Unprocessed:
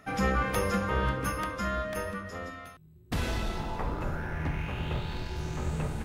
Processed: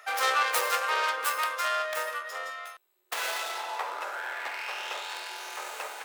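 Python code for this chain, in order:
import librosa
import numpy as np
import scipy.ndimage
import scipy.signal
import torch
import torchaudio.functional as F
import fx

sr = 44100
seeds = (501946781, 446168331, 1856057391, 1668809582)

y = fx.tracing_dist(x, sr, depth_ms=0.34)
y = scipy.signal.sosfilt(scipy.signal.bessel(6, 870.0, 'highpass', norm='mag', fs=sr, output='sos'), y)
y = F.gain(torch.from_numpy(y), 7.0).numpy()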